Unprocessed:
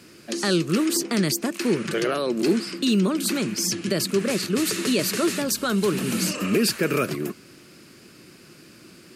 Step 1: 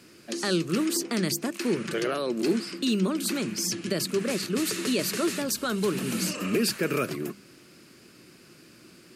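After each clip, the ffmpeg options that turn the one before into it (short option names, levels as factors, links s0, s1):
-af "bandreject=f=50:t=h:w=6,bandreject=f=100:t=h:w=6,bandreject=f=150:t=h:w=6,bandreject=f=200:t=h:w=6,volume=0.631"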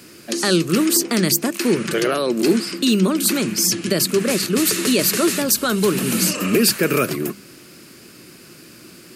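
-af "highshelf=f=11000:g=11,volume=2.66"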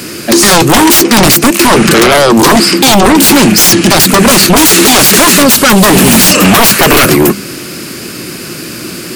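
-af "aeval=exprs='0.668*sin(PI/2*5.62*val(0)/0.668)':c=same,volume=1.33"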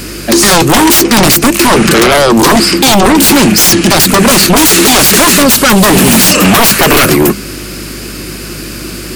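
-af "aeval=exprs='val(0)+0.0501*(sin(2*PI*50*n/s)+sin(2*PI*2*50*n/s)/2+sin(2*PI*3*50*n/s)/3+sin(2*PI*4*50*n/s)/4+sin(2*PI*5*50*n/s)/5)':c=same,volume=0.891"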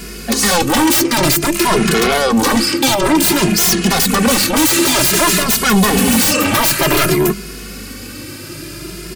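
-filter_complex "[0:a]asplit=2[s0][s1];[s1]adelay=2.4,afreqshift=0.54[s2];[s0][s2]amix=inputs=2:normalize=1,volume=0.596"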